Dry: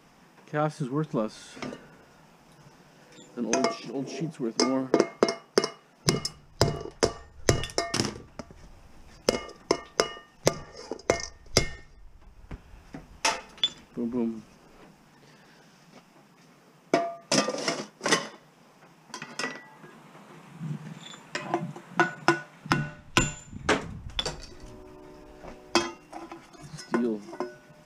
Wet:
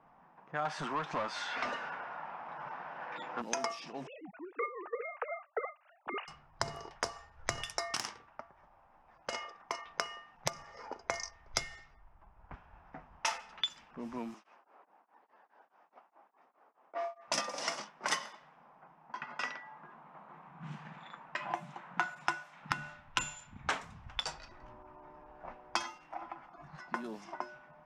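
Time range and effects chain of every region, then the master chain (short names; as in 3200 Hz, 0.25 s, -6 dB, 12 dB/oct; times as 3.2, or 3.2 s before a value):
0.65–3.42 overdrive pedal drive 24 dB, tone 2100 Hz, clips at -15.5 dBFS + air absorption 61 m
4.07–6.28 sine-wave speech + dynamic EQ 480 Hz, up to +6 dB, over -34 dBFS, Q 2.2 + tremolo 3.8 Hz, depth 77%
7.97–9.86 low shelf 300 Hz -12 dB + overloaded stage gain 18.5 dB
14.34–17.28 HPF 310 Hz 24 dB/oct + beating tremolo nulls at 4.8 Hz
whole clip: low-pass opened by the level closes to 910 Hz, open at -25 dBFS; resonant low shelf 580 Hz -10 dB, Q 1.5; compressor 2:1, threshold -37 dBFS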